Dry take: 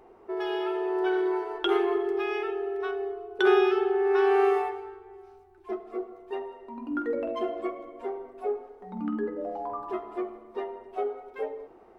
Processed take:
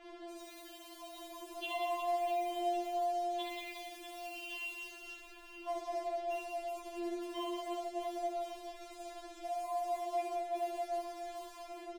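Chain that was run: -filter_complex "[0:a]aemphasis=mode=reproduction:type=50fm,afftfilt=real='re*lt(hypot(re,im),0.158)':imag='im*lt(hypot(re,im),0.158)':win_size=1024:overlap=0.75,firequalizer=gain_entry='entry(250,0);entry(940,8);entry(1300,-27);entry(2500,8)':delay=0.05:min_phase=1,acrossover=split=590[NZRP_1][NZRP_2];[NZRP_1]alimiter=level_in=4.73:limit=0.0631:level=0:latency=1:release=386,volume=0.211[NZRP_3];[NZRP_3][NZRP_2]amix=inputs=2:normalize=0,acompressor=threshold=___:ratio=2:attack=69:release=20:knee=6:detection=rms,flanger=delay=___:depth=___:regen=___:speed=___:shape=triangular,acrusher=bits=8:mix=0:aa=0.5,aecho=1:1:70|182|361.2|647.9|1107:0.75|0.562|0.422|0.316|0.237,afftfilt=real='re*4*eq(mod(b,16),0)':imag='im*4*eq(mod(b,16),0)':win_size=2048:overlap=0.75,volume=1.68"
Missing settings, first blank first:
0.00355, 1.7, 4.8, -78, 0.6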